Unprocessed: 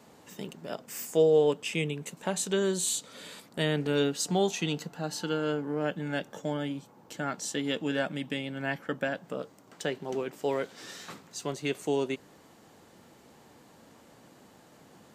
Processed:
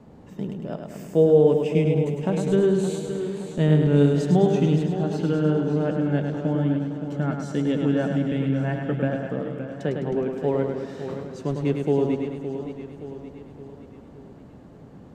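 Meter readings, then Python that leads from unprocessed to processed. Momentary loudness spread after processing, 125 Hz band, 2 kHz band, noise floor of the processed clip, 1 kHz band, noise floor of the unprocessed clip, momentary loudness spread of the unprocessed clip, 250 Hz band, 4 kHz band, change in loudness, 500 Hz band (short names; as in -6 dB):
16 LU, +14.5 dB, -1.5 dB, -46 dBFS, +3.0 dB, -57 dBFS, 14 LU, +11.0 dB, -6.0 dB, +7.5 dB, +7.0 dB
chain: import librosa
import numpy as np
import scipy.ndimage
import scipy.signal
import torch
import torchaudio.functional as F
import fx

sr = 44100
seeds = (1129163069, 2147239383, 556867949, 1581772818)

p1 = fx.tilt_eq(x, sr, slope=-4.5)
p2 = p1 + fx.echo_feedback(p1, sr, ms=104, feedback_pct=57, wet_db=-5.5, dry=0)
y = fx.echo_warbled(p2, sr, ms=569, feedback_pct=50, rate_hz=2.8, cents=67, wet_db=-10.0)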